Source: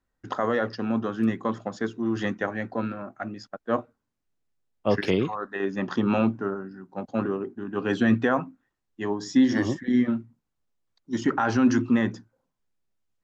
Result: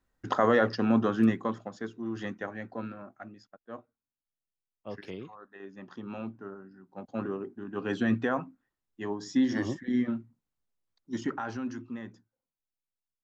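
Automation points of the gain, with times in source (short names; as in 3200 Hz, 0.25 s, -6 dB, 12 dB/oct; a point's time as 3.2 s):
1.18 s +2 dB
1.71 s -8.5 dB
3.04 s -8.5 dB
3.66 s -17.5 dB
6.01 s -17.5 dB
7.34 s -6 dB
11.16 s -6 dB
11.76 s -17.5 dB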